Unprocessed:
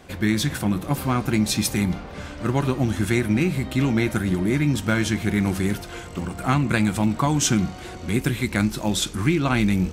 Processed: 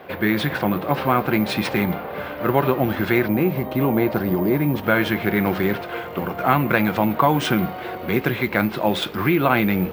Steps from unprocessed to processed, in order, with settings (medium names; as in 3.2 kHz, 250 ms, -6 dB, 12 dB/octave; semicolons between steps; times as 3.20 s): time-frequency box 3.27–4.83 s, 1.2–7.9 kHz -8 dB; careless resampling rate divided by 3×, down none, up zero stuff; high-pass 140 Hz 12 dB/octave; distance through air 410 m; in parallel at -1 dB: peak limiter -16 dBFS, peak gain reduction 8.5 dB; on the sum: resonant low shelf 360 Hz -6.5 dB, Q 1.5; trim +4.5 dB